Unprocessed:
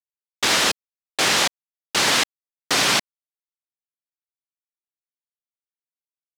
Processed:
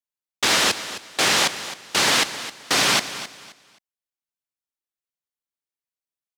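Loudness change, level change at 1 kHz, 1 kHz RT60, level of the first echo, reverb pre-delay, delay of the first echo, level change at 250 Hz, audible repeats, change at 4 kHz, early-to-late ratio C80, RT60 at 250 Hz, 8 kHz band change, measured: 0.0 dB, 0.0 dB, none, -13.5 dB, none, 0.263 s, 0.0 dB, 2, 0.0 dB, none, none, 0.0 dB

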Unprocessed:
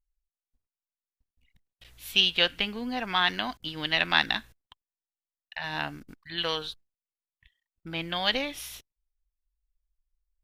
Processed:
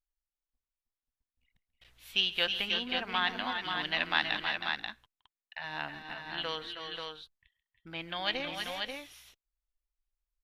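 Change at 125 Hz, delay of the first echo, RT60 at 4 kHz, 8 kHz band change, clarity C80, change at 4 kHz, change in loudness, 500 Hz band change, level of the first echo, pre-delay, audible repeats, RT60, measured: -8.0 dB, 0.137 s, none, n/a, none, -5.0 dB, -5.5 dB, -5.0 dB, -19.5 dB, none, 4, none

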